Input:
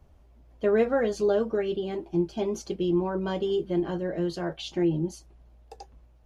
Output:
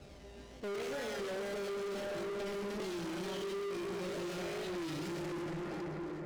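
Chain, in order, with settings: Wiener smoothing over 41 samples; in parallel at -9.5 dB: decimation with a swept rate 32×, swing 100% 0.73 Hz; on the sum: resonator 200 Hz, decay 0.85 s, harmonics all, mix 80%; step gate "xxx.xxxxxx..x.x." 75 bpm -12 dB; limiter -32 dBFS, peak gain reduction 11.5 dB; bell 6100 Hz +13 dB 2.9 oct; plate-style reverb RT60 4.2 s, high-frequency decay 0.4×, DRR 3.5 dB; compressor, threshold -41 dBFS, peak gain reduction 10 dB; bell 1100 Hz -4 dB 0.99 oct; overdrive pedal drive 36 dB, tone 2800 Hz, clips at -34 dBFS; record warp 33 1/3 rpm, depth 100 cents; gain +1 dB

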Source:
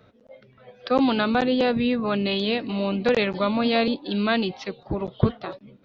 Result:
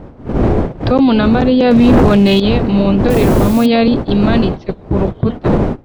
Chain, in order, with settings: wind noise 510 Hz -22 dBFS; gate -28 dBFS, range -17 dB; low shelf 460 Hz +10 dB; in parallel at 0 dB: compressor, threshold -25 dBFS, peak gain reduction 25 dB; 1.71–2.4 on the sum: sample leveller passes 3; limiter -7.5 dBFS, peak gain reduction 17 dB; 3.1–3.66 requantised 6-bit, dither triangular; gain +4 dB

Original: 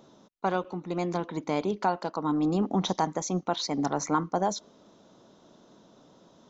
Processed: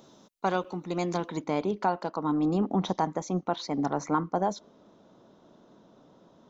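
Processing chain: high shelf 3800 Hz +7 dB, from 1.42 s -6.5 dB, from 2.65 s -12 dB

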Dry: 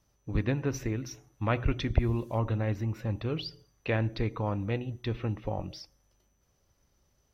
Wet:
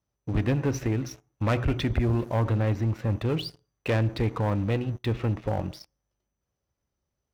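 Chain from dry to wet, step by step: HPF 44 Hz 12 dB/oct; high shelf 3600 Hz -6.5 dB; sample leveller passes 3; gain -4.5 dB

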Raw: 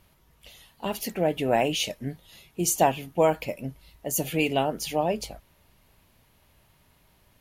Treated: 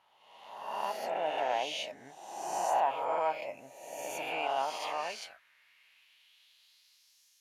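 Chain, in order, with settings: spectral swells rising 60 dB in 1.14 s; limiter -13 dBFS, peak gain reduction 6.5 dB; band-pass sweep 880 Hz -> 6000 Hz, 4.5–7.24; tilt shelf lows -7.5 dB, about 1100 Hz; reverse echo 0.119 s -7 dB

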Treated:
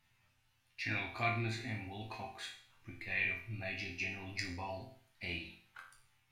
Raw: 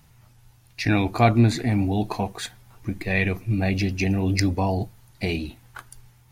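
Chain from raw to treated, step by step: bell 2400 Hz +13 dB 2.1 oct; notch 450 Hz, Q 12; resonator bank F2 major, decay 0.51 s; gain -5.5 dB

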